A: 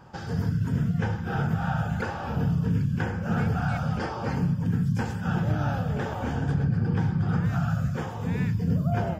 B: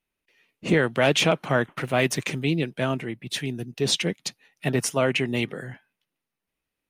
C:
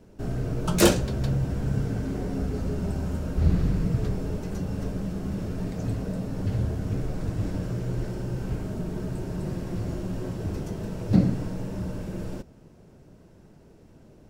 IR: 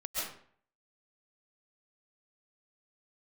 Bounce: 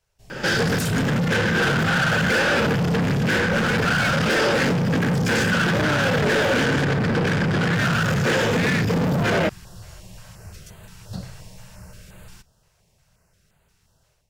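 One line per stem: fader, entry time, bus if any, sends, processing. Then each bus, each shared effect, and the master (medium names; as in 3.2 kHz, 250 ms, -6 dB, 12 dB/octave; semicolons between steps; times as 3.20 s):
-2.5 dB, 0.30 s, bus A, no send, high-order bell 920 Hz -16 dB 1 oct; overdrive pedal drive 35 dB, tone 3.8 kHz, clips at -14 dBFS
mute
-5.0 dB, 0.00 s, bus A, no send, amplifier tone stack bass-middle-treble 10-0-10; step-sequenced notch 5.7 Hz 230–5500 Hz
bus A: 0.0 dB, level rider gain up to 10.5 dB; peak limiter -15 dBFS, peak gain reduction 11 dB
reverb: none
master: bass shelf 80 Hz -9.5 dB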